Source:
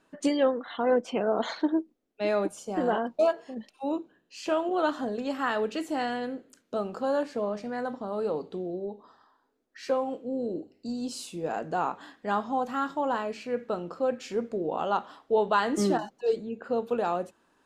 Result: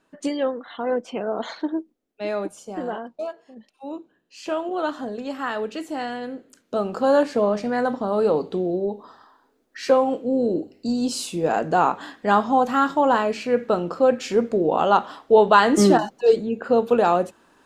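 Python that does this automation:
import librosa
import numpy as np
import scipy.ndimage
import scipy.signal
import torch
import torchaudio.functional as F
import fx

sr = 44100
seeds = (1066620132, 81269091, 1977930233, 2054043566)

y = fx.gain(x, sr, db=fx.line((2.66, 0.0), (3.34, -8.0), (4.47, 1.0), (6.2, 1.0), (7.15, 10.0)))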